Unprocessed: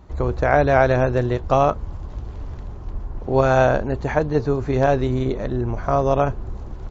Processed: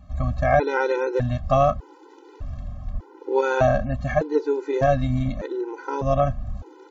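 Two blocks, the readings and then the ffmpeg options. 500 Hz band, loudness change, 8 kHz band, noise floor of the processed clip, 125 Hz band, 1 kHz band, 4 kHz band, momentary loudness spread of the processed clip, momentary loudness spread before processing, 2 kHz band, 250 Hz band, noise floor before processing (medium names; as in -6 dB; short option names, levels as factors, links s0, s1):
-3.0 dB, -3.0 dB, no reading, -49 dBFS, -3.5 dB, -3.0 dB, -3.0 dB, 16 LU, 18 LU, -3.5 dB, -4.0 dB, -34 dBFS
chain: -af "afftfilt=real='re*gt(sin(2*PI*0.83*pts/sr)*(1-2*mod(floor(b*sr/1024/260),2)),0)':imag='im*gt(sin(2*PI*0.83*pts/sr)*(1-2*mod(floor(b*sr/1024/260),2)),0)':win_size=1024:overlap=0.75"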